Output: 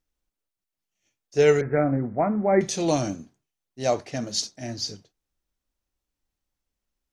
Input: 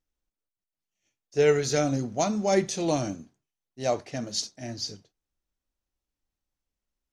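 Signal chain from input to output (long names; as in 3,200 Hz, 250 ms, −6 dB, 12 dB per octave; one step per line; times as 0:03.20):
0:01.61–0:02.61: Butterworth low-pass 2,200 Hz 96 dB per octave
level +3 dB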